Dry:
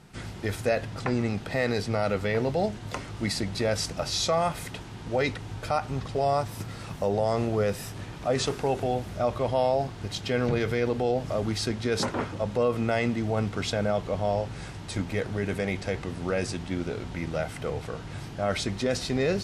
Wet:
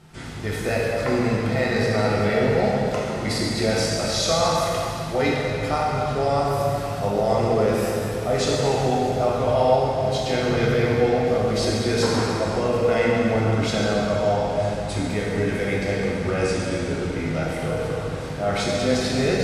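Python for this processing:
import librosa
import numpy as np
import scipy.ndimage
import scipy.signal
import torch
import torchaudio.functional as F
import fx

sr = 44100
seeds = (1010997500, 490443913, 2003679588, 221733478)

y = fx.rev_plate(x, sr, seeds[0], rt60_s=3.1, hf_ratio=0.8, predelay_ms=0, drr_db=-5.5)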